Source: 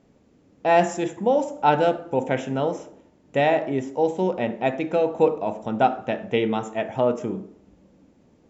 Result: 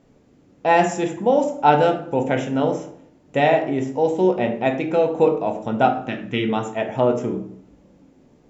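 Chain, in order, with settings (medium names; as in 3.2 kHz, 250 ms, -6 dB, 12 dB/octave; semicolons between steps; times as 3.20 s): 6.08–6.48 s: high-order bell 640 Hz -11.5 dB 1.3 oct; simulated room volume 48 m³, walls mixed, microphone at 0.32 m; trim +2 dB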